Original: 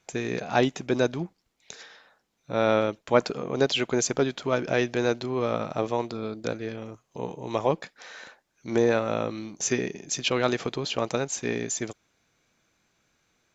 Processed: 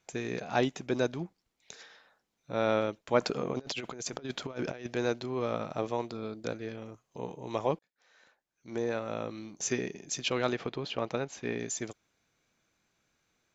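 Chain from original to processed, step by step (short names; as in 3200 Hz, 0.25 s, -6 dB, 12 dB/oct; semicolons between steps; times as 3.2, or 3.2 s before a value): 3.21–4.87 negative-ratio compressor -30 dBFS, ratio -0.5; 7.79–9.68 fade in; 10.52–11.59 LPF 3800 Hz 12 dB/oct; gain -5.5 dB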